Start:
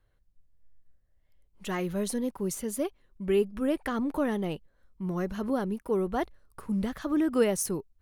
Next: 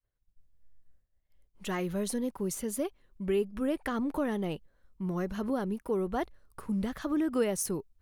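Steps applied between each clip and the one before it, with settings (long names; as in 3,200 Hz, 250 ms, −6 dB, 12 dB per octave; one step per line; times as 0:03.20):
downward expander −58 dBFS
downward compressor 1.5 to 1, threshold −31 dBFS, peak gain reduction 5 dB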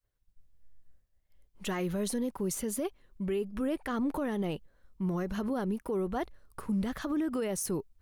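brickwall limiter −27 dBFS, peak gain reduction 10.5 dB
level +2.5 dB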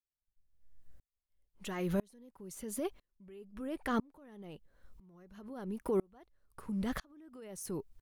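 in parallel at +2 dB: downward compressor, threshold −40 dBFS, peak gain reduction 12 dB
on the sum: tremolo with a ramp in dB swelling 1 Hz, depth 35 dB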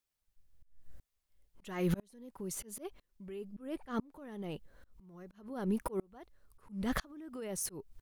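volume swells 381 ms
level +7.5 dB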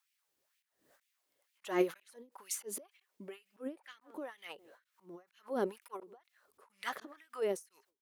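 far-end echo of a speakerphone 160 ms, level −30 dB
auto-filter high-pass sine 2.1 Hz 310–2,500 Hz
every ending faded ahead of time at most 240 dB per second
level +4.5 dB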